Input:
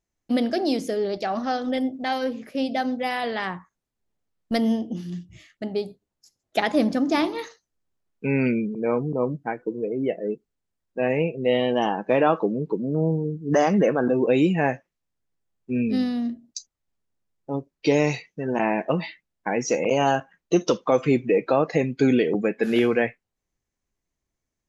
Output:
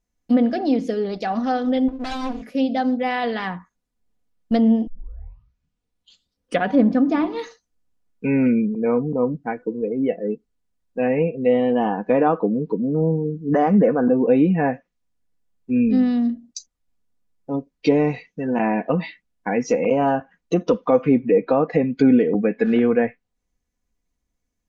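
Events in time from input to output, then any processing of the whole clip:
0:01.88–0:02.42: lower of the sound and its delayed copy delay 3 ms
0:04.87: tape start 2.01 s
whole clip: treble cut that deepens with the level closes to 1,600 Hz, closed at −17 dBFS; low-shelf EQ 230 Hz +6 dB; comb filter 4.1 ms, depth 49%

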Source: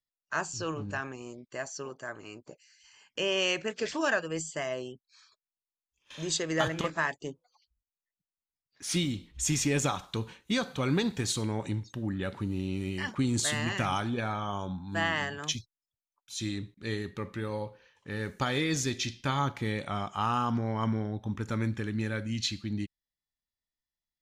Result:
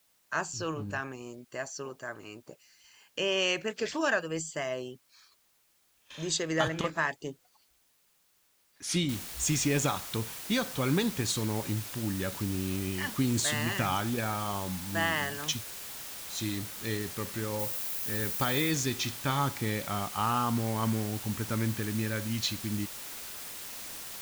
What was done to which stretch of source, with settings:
0:09.09: noise floor change −69 dB −42 dB
0:17.59–0:18.71: high-shelf EQ 12,000 Hz +11.5 dB

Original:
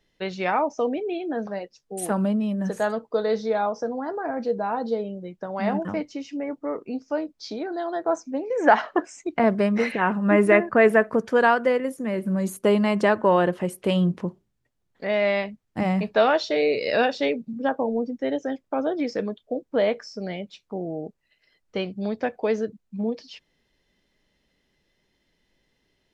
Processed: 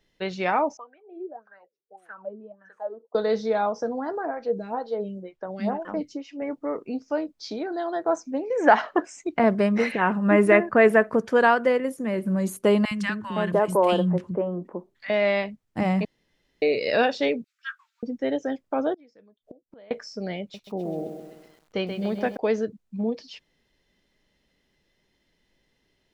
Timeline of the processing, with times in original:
0:00.77–0:03.15: LFO wah 1.7 Hz 360–1,600 Hz, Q 11
0:04.25–0:06.42: phaser with staggered stages 2.1 Hz
0:12.85–0:15.10: three-band delay without the direct sound highs, lows, mids 60/510 ms, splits 240/1,300 Hz
0:16.05–0:16.62: fill with room tone
0:17.44–0:18.03: Butterworth high-pass 1,300 Hz 72 dB per octave
0:18.94–0:19.91: gate with flip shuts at −32 dBFS, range −28 dB
0:20.41–0:22.37: feedback echo at a low word length 130 ms, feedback 55%, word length 9 bits, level −7 dB

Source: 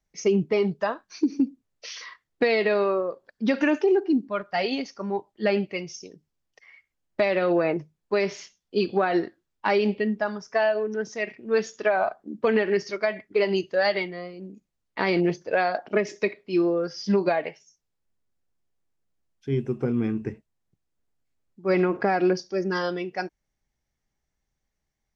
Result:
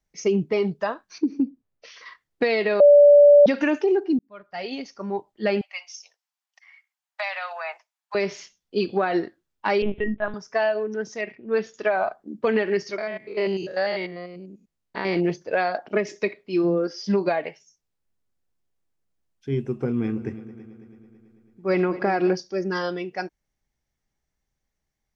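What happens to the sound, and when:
0:01.18–0:02.06: low-pass filter 1,500 Hz 6 dB per octave
0:02.80–0:03.46: beep over 580 Hz −8 dBFS
0:04.19–0:05.10: fade in
0:05.61–0:08.15: Butterworth high-pass 720 Hz 48 dB per octave
0:09.82–0:10.34: linear-prediction vocoder at 8 kHz pitch kept
0:11.21–0:11.74: high-frequency loss of the air 160 metres
0:12.98–0:15.16: spectrum averaged block by block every 100 ms
0:16.63–0:17.06: high-pass with resonance 130 Hz → 460 Hz, resonance Q 3.5
0:19.76–0:22.35: echo machine with several playback heads 110 ms, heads second and third, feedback 56%, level −17.5 dB

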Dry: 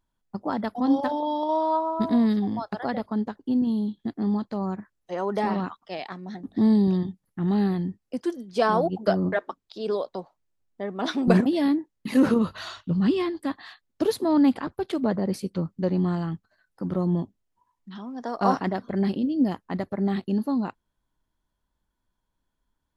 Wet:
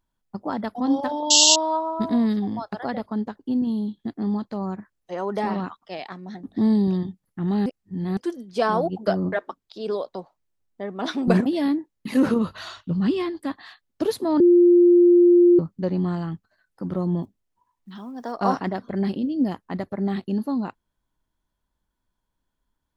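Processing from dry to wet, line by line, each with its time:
0:01.30–0:01.56: sound drawn into the spectrogram noise 2,700–7,800 Hz −15 dBFS
0:07.66–0:08.17: reverse
0:14.40–0:15.59: beep over 350 Hz −10.5 dBFS
0:17.23–0:18.34: one scale factor per block 7 bits

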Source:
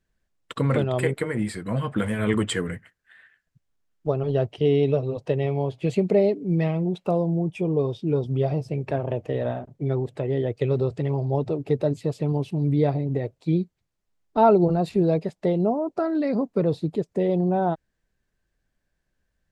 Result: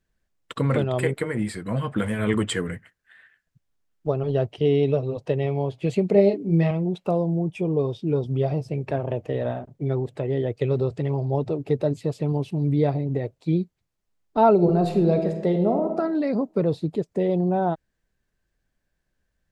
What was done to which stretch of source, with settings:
0:06.12–0:06.71: double-tracking delay 30 ms −4.5 dB
0:14.53–0:15.92: thrown reverb, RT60 1.1 s, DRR 5 dB

